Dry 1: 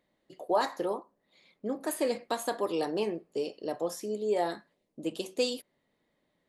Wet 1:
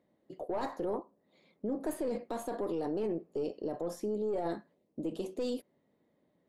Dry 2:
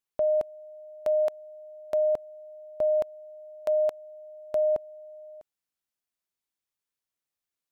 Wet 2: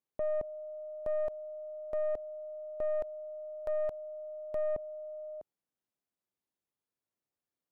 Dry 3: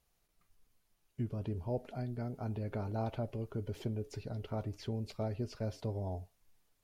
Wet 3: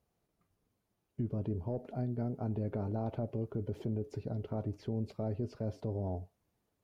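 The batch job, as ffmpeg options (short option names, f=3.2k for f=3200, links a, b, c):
-af "highpass=56,lowshelf=f=110:g=-9,aeval=exprs='(tanh(14.1*val(0)+0.3)-tanh(0.3))/14.1':c=same,tiltshelf=f=970:g=8.5,alimiter=level_in=2dB:limit=-24dB:level=0:latency=1:release=27,volume=-2dB"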